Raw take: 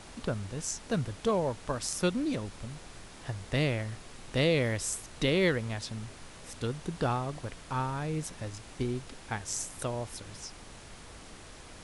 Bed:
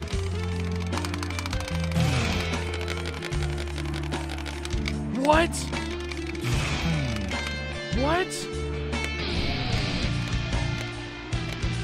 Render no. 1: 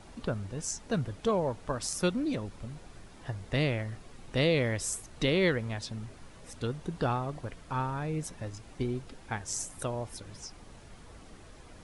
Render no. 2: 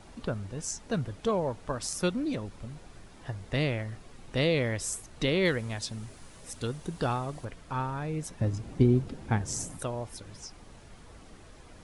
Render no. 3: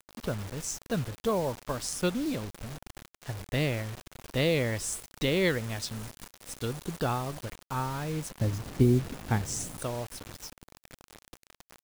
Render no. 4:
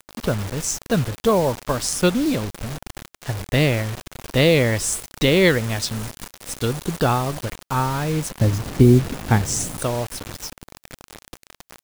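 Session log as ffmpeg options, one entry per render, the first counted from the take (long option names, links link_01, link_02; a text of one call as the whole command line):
ffmpeg -i in.wav -af "afftdn=noise_reduction=8:noise_floor=-49" out.wav
ffmpeg -i in.wav -filter_complex "[0:a]asettb=1/sr,asplit=3[link_01][link_02][link_03];[link_01]atrim=end=5.454[link_04];[link_02]atrim=start=5.45:end=7.45,asetpts=PTS-STARTPTS,afade=type=in:duration=0.004:curve=qsin,afade=type=out:start_time=1.996:duration=0.004:curve=qsin,highshelf=frequency=5800:gain=10.5[link_05];[link_03]atrim=start=7.446[link_06];[link_04][link_05]acrossfade=duration=0.004:curve1=hsin:curve2=qsin[link_07];[link_07][link_06]acrossfade=duration=0.004:curve1=qsin:curve2=hsin,asettb=1/sr,asplit=3[link_08][link_09][link_10];[link_08]atrim=end=8.404[link_11];[link_09]atrim=start=8.4:end=9.77,asetpts=PTS-STARTPTS,afade=type=in:duration=0.004:curve=qsin,afade=type=out:start_time=1.366:duration=0.004:curve=qsin,equalizer=frequency=150:width=0.31:gain=12.5[link_12];[link_10]atrim=start=9.766[link_13];[link_11][link_12]acrossfade=duration=0.004:curve1=hsin:curve2=qsin[link_14];[link_14][link_13]acrossfade=duration=0.004:curve1=qsin:curve2=hsin" out.wav
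ffmpeg -i in.wav -af "acrusher=bits=6:mix=0:aa=0.000001" out.wav
ffmpeg -i in.wav -af "volume=10.5dB,alimiter=limit=-3dB:level=0:latency=1" out.wav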